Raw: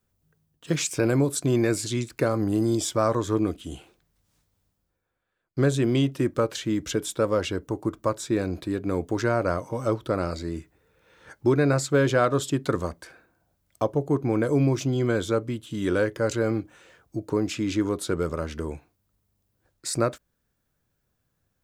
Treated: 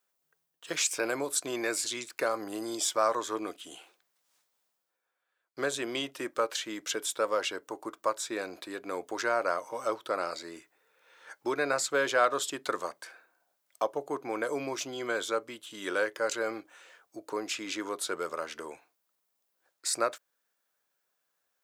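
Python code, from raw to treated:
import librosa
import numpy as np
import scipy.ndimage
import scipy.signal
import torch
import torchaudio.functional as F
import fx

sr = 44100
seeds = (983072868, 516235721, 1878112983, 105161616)

y = scipy.signal.sosfilt(scipy.signal.butter(2, 670.0, 'highpass', fs=sr, output='sos'), x)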